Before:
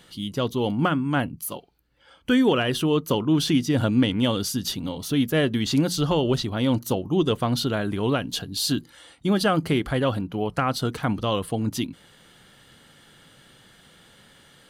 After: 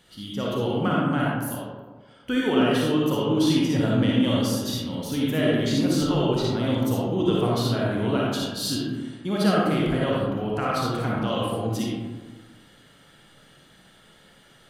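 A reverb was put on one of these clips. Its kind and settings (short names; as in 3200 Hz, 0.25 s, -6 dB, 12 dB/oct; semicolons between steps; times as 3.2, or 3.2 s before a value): digital reverb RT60 1.4 s, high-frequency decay 0.4×, pre-delay 15 ms, DRR -5 dB; gain -6.5 dB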